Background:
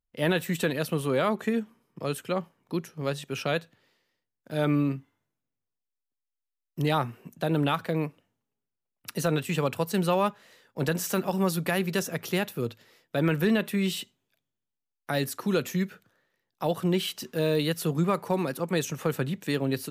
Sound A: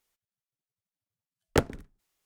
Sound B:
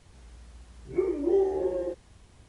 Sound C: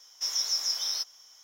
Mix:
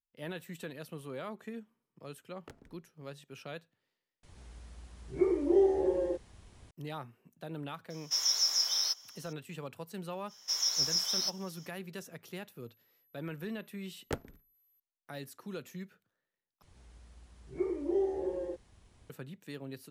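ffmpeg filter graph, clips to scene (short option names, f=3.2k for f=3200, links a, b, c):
-filter_complex "[1:a]asplit=2[a][b];[2:a]asplit=2[c][d];[3:a]asplit=2[e][f];[0:a]volume=-16dB[g];[a]acompressor=threshold=-28dB:ratio=6:attack=3.2:release=140:knee=1:detection=peak[h];[b]aeval=exprs='val(0)+0.00141*sin(2*PI*12000*n/s)':c=same[i];[g]asplit=3[j][k][l];[j]atrim=end=4.234[m];[c]atrim=end=2.48,asetpts=PTS-STARTPTS,volume=-1dB[n];[k]atrim=start=6.706:end=16.624[o];[d]atrim=end=2.48,asetpts=PTS-STARTPTS,volume=-6.5dB[p];[l]atrim=start=19.096[q];[h]atrim=end=2.25,asetpts=PTS-STARTPTS,volume=-17dB,afade=t=in:d=0.004:c=hsin,afade=t=out:st=2.246:d=0.004:c=hsin,adelay=920[r];[e]atrim=end=1.43,asetpts=PTS-STARTPTS,afade=t=in:d=0.004:c=hsin,afade=t=out:st=1.426:d=0.004:c=hsin,adelay=7900[s];[f]atrim=end=1.43,asetpts=PTS-STARTPTS,volume=-1.5dB,afade=t=in:d=0.05,afade=t=out:st=1.38:d=0.05,adelay=10270[t];[i]atrim=end=2.25,asetpts=PTS-STARTPTS,volume=-12.5dB,afade=t=in:d=0.004:c=hsin,afade=t=out:st=2.246:d=0.004:c=hsin,adelay=12550[u];[m][n]acrossfade=d=0.004:c1=hsin:c2=hsin[v];[v][o]acrossfade=d=0.004:c1=hsin:c2=hsin[w];[w][p]acrossfade=d=0.004:c1=hsin:c2=hsin[x];[x][q]acrossfade=d=0.004:c1=hsin:c2=hsin[y];[y][r][s][t][u]amix=inputs=5:normalize=0"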